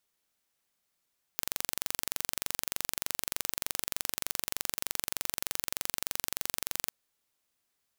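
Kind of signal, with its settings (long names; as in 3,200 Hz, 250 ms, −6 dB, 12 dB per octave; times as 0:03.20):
impulse train 23.3 per second, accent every 0, −3.5 dBFS 5.50 s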